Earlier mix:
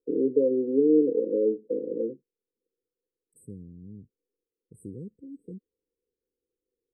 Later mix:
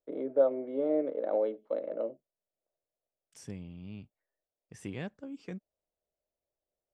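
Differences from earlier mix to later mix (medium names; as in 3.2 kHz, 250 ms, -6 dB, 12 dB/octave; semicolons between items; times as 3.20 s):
first voice -11.5 dB; master: remove brick-wall FIR band-stop 520–7900 Hz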